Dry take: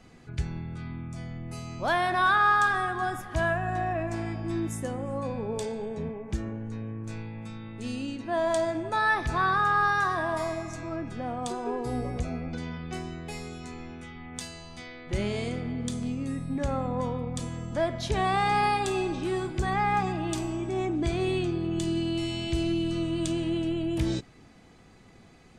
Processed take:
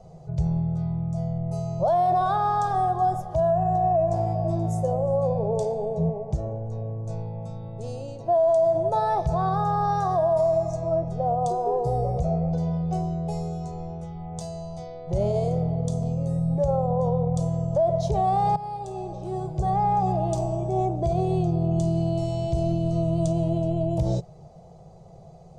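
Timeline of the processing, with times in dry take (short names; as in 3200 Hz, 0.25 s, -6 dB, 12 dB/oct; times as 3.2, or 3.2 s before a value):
3.67–4.45 echo throw 0.48 s, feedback 55%, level -12.5 dB
18.56–20.11 fade in, from -18.5 dB
whole clip: EQ curve 110 Hz 0 dB, 160 Hz +9 dB, 260 Hz -22 dB, 370 Hz -4 dB, 640 Hz +10 dB, 1700 Hz -24 dB, 2600 Hz -21 dB, 6000 Hz -7 dB, 11000 Hz -14 dB; limiter -21 dBFS; gain +6 dB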